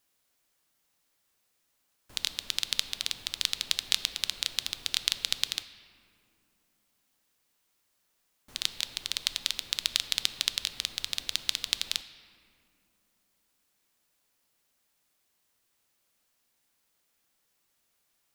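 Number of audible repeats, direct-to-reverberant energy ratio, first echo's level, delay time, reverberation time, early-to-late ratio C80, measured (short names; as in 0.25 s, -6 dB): none, 11.5 dB, none, none, 2.5 s, 13.5 dB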